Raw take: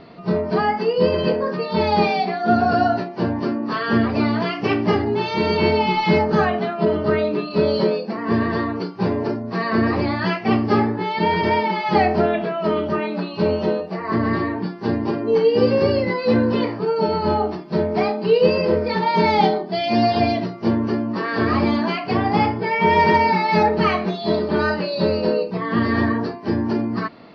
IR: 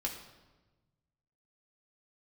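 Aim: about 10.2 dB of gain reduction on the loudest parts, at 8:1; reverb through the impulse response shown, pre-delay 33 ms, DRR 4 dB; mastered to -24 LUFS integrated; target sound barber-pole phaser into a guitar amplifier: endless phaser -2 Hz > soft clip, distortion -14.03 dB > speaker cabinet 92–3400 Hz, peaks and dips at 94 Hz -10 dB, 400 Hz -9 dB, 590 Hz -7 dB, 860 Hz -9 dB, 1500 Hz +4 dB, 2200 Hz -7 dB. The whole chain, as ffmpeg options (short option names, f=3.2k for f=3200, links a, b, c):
-filter_complex "[0:a]acompressor=threshold=-22dB:ratio=8,asplit=2[a][b];[1:a]atrim=start_sample=2205,adelay=33[c];[b][c]afir=irnorm=-1:irlink=0,volume=-6dB[d];[a][d]amix=inputs=2:normalize=0,asplit=2[e][f];[f]afreqshift=-2[g];[e][g]amix=inputs=2:normalize=1,asoftclip=threshold=-24dB,highpass=92,equalizer=f=94:t=q:w=4:g=-10,equalizer=f=400:t=q:w=4:g=-9,equalizer=f=590:t=q:w=4:g=-7,equalizer=f=860:t=q:w=4:g=-9,equalizer=f=1.5k:t=q:w=4:g=4,equalizer=f=2.2k:t=q:w=4:g=-7,lowpass=f=3.4k:w=0.5412,lowpass=f=3.4k:w=1.3066,volume=10dB"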